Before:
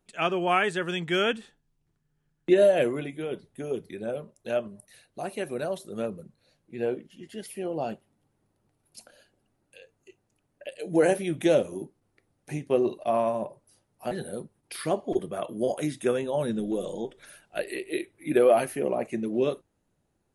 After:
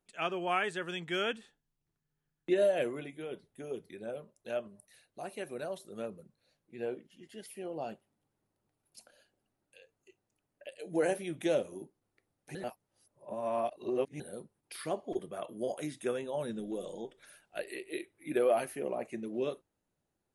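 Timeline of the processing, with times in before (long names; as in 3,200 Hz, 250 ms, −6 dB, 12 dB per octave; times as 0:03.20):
0:12.55–0:14.20: reverse
whole clip: low-shelf EQ 280 Hz −5 dB; level −7 dB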